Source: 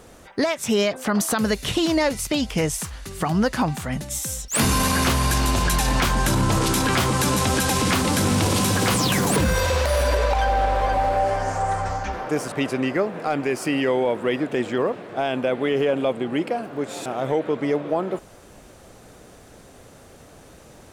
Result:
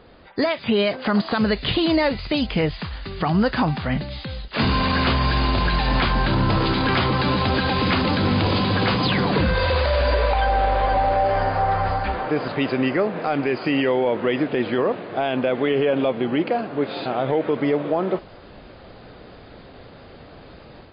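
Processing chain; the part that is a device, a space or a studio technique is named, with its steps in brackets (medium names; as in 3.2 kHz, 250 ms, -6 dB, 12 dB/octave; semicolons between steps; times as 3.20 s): low-bitrate web radio (level rider gain up to 6 dB; peak limiter -9.5 dBFS, peak gain reduction 4 dB; trim -1.5 dB; MP3 24 kbps 11.025 kHz)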